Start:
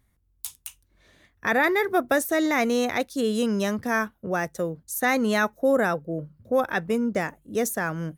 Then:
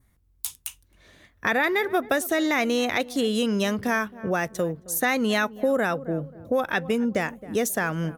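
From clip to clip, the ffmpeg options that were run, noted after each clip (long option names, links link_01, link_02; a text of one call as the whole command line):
ffmpeg -i in.wav -filter_complex "[0:a]adynamicequalizer=threshold=0.00562:dfrequency=3000:dqfactor=1.8:tfrequency=3000:tqfactor=1.8:attack=5:release=100:ratio=0.375:range=3.5:mode=boostabove:tftype=bell,asplit=2[link_01][link_02];[link_02]adelay=267,lowpass=frequency=890:poles=1,volume=-19.5dB,asplit=2[link_03][link_04];[link_04]adelay=267,lowpass=frequency=890:poles=1,volume=0.37,asplit=2[link_05][link_06];[link_06]adelay=267,lowpass=frequency=890:poles=1,volume=0.37[link_07];[link_01][link_03][link_05][link_07]amix=inputs=4:normalize=0,acompressor=threshold=-26dB:ratio=2.5,volume=4dB" out.wav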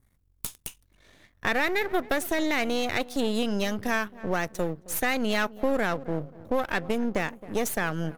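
ffmpeg -i in.wav -af "aeval=exprs='if(lt(val(0),0),0.251*val(0),val(0))':channel_layout=same" out.wav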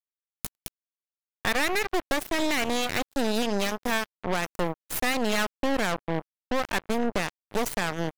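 ffmpeg -i in.wav -af "acrusher=bits=3:mix=0:aa=0.5" out.wav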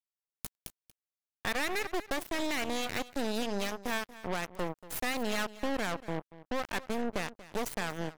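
ffmpeg -i in.wav -af "aecho=1:1:235:0.141,volume=-7dB" out.wav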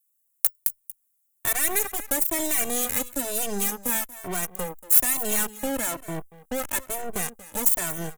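ffmpeg -i in.wav -filter_complex "[0:a]aexciter=amount=11.5:drive=4.7:freq=7000,asoftclip=type=tanh:threshold=-7dB,asplit=2[link_01][link_02];[link_02]adelay=2.1,afreqshift=1.1[link_03];[link_01][link_03]amix=inputs=2:normalize=1,volume=5.5dB" out.wav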